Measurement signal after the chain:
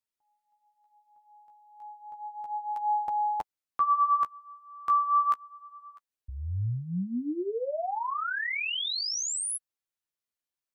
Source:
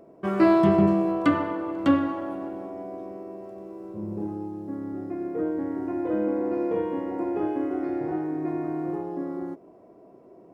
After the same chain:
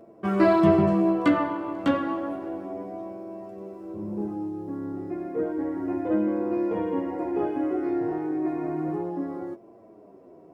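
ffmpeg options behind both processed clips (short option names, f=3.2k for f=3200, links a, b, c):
-af "flanger=delay=8.8:depth=8.4:regen=11:speed=0.31:shape=sinusoidal,volume=4dB"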